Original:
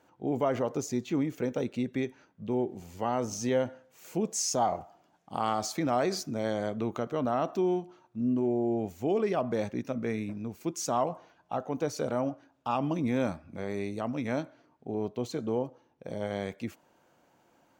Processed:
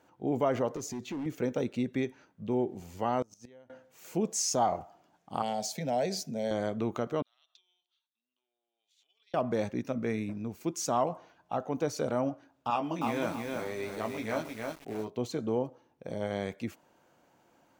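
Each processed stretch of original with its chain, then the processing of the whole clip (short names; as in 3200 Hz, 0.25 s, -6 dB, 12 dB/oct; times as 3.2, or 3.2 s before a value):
0.76–1.26 HPF 66 Hz + compressor 2.5:1, threshold -32 dBFS + hard clip -32.5 dBFS
3.22–3.7 low shelf 350 Hz -2.5 dB + flipped gate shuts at -26 dBFS, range -27 dB
5.42–6.51 HPF 61 Hz + fixed phaser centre 320 Hz, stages 6 + mismatched tape noise reduction decoder only
7.22–9.34 compressor 8:1, threshold -34 dBFS + ladder band-pass 3800 Hz, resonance 75% + mismatched tape noise reduction decoder only
12.7–15.12 low shelf 330 Hz -10.5 dB + doubler 18 ms -5 dB + lo-fi delay 0.313 s, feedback 35%, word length 8-bit, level -3 dB
whole clip: dry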